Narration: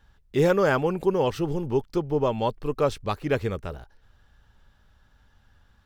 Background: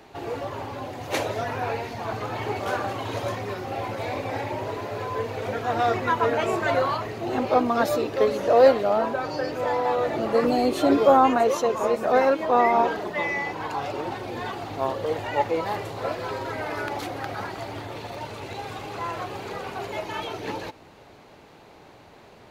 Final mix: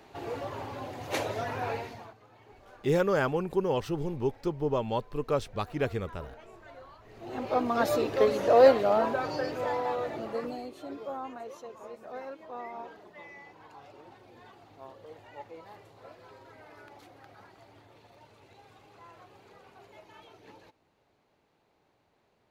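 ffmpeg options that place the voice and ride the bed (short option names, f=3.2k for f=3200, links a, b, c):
-filter_complex "[0:a]adelay=2500,volume=-5dB[a];[1:a]volume=19.5dB,afade=t=out:st=1.75:d=0.39:silence=0.0794328,afade=t=in:st=7.02:d=0.99:silence=0.0595662,afade=t=out:st=9.14:d=1.58:silence=0.112202[b];[a][b]amix=inputs=2:normalize=0"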